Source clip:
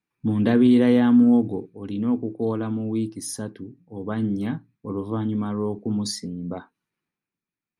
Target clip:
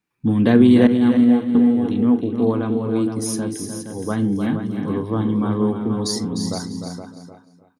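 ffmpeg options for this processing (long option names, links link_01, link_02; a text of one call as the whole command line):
ffmpeg -i in.wav -filter_complex "[0:a]asplit=2[link_01][link_02];[link_02]aecho=0:1:42|348|469|801:0.133|0.266|0.376|0.1[link_03];[link_01][link_03]amix=inputs=2:normalize=0,asettb=1/sr,asplit=3[link_04][link_05][link_06];[link_04]atrim=end=0.874[link_07];[link_05]atrim=start=0.87:end=1.55,asetpts=PTS-STARTPTS,afade=type=in:duration=0.004:curve=qsin,afade=type=out:start_time=0.676:duration=0.004:curve=qsin,agate=range=-33dB:threshold=-8dB:ratio=3:detection=peak[link_08];[link_06]atrim=start=1.546[link_09];[link_07][link_08]acrossfade=duration=0.004:curve1=hsin:curve2=qsin[link_10];[link_10][link_09]acrossfade=duration=0.004:curve1=qsin:curve2=hsin,asplit=2[link_11][link_12];[link_12]aecho=0:1:302|604|906:0.398|0.0717|0.0129[link_13];[link_11][link_13]amix=inputs=2:normalize=0,volume=4.5dB" out.wav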